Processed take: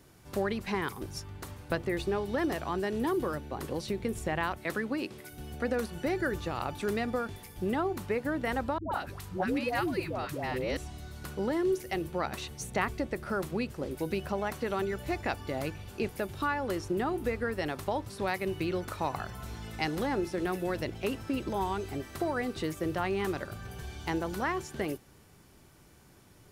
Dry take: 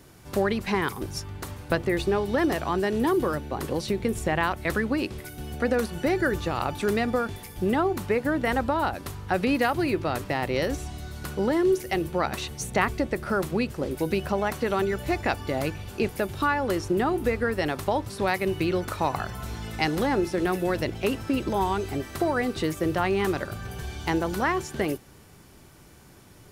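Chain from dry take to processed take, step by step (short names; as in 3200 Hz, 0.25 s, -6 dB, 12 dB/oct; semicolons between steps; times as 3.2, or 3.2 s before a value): 4.58–5.32 HPF 150 Hz 12 dB/oct; 8.78–10.77 dispersion highs, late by 0.138 s, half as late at 560 Hz; gain -6.5 dB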